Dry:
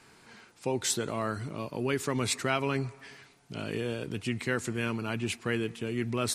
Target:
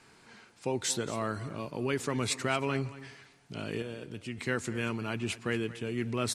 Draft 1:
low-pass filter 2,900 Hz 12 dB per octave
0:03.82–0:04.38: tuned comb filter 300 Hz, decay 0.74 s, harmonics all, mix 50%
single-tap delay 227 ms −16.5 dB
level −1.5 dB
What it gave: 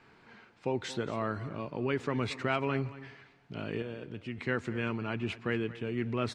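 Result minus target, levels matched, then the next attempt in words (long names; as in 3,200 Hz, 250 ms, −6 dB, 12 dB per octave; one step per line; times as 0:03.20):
8,000 Hz band −15.5 dB
low-pass filter 11,000 Hz 12 dB per octave
0:03.82–0:04.38: tuned comb filter 300 Hz, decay 0.74 s, harmonics all, mix 50%
single-tap delay 227 ms −16.5 dB
level −1.5 dB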